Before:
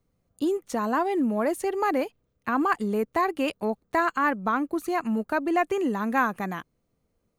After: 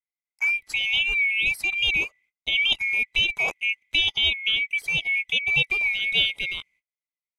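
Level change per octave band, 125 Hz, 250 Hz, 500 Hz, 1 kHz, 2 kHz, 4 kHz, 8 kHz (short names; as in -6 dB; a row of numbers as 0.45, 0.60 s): n/a, -22.0 dB, -17.5 dB, -19.5 dB, +10.5 dB, +23.5 dB, +1.0 dB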